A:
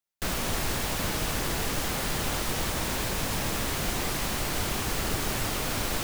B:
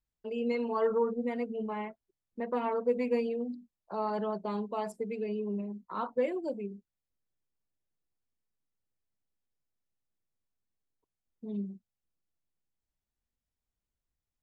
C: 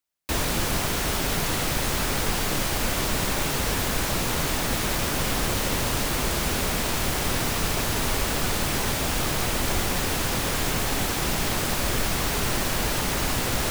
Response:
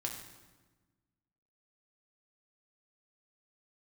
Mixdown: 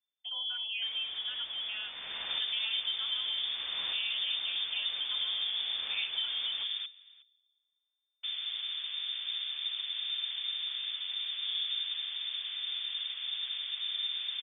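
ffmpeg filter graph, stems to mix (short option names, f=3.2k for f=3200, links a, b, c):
-filter_complex "[0:a]adelay=600,volume=-8dB[a];[1:a]acompressor=threshold=-31dB:ratio=6,volume=-2dB,asplit=2[b][c];[2:a]lowpass=f=2.2k:w=0.5412,lowpass=f=2.2k:w=1.3066,tiltshelf=f=770:g=6.5,adelay=2000,volume=-16.5dB,asplit=3[d][e][f];[d]atrim=end=6.86,asetpts=PTS-STARTPTS,afade=t=out:st=6.856:d=0.004:c=hsin[g];[e]atrim=start=6.86:end=8.23,asetpts=PTS-STARTPTS,volume=0[h];[f]atrim=start=8.23,asetpts=PTS-STARTPTS,afade=t=in:d=0.004:c=hsin[i];[g][h][i]concat=n=3:v=0:a=1,asplit=3[j][k][l];[k]volume=-17.5dB[m];[l]volume=-20.5dB[n];[c]apad=whole_len=292701[o];[a][o]sidechaincompress=threshold=-44dB:ratio=8:attack=35:release=539[p];[3:a]atrim=start_sample=2205[q];[m][q]afir=irnorm=-1:irlink=0[r];[n]aecho=0:1:364:1[s];[p][b][j][r][s]amix=inputs=5:normalize=0,lowpass=f=3.1k:t=q:w=0.5098,lowpass=f=3.1k:t=q:w=0.6013,lowpass=f=3.1k:t=q:w=0.9,lowpass=f=3.1k:t=q:w=2.563,afreqshift=-3600"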